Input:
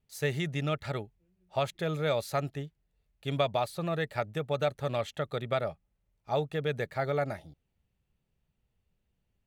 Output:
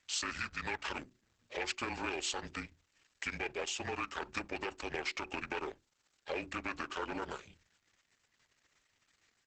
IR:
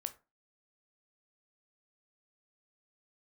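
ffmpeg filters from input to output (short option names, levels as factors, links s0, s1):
-filter_complex "[0:a]aeval=exprs='if(lt(val(0),0),0.447*val(0),val(0))':c=same,asplit=2[s0][s1];[1:a]atrim=start_sample=2205,atrim=end_sample=3528,lowpass=8900[s2];[s1][s2]afir=irnorm=-1:irlink=0,volume=0.282[s3];[s0][s3]amix=inputs=2:normalize=0,alimiter=limit=0.0668:level=0:latency=1:release=53,tiltshelf=f=1500:g=-9,afreqshift=-27,highpass=f=280:p=1,acompressor=threshold=0.00178:ratio=2.5,bandreject=f=60:t=h:w=6,bandreject=f=120:t=h:w=6,bandreject=f=180:t=h:w=6,bandreject=f=240:t=h:w=6,bandreject=f=300:t=h:w=6,bandreject=f=360:t=h:w=6,bandreject=f=420:t=h:w=6,bandreject=f=480:t=h:w=6,bandreject=f=540:t=h:w=6,asetrate=30296,aresample=44100,atempo=1.45565,volume=5.62" -ar 48000 -c:a libopus -b:a 10k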